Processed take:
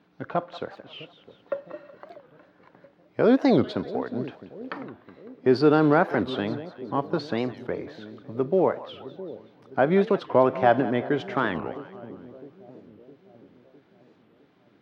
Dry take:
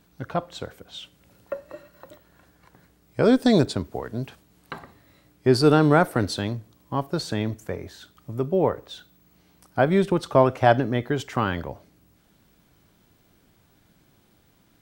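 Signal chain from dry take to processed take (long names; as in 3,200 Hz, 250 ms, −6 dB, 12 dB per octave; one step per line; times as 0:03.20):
high-pass filter 210 Hz 12 dB per octave
in parallel at −1 dB: brickwall limiter −15 dBFS, peak gain reduction 10.5 dB
on the sum: floating-point word with a short mantissa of 4 bits
high-frequency loss of the air 280 metres
on a send: echo with a time of its own for lows and highs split 540 Hz, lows 659 ms, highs 184 ms, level −15 dB
on the sum: wow of a warped record 45 rpm, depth 250 cents
level −3 dB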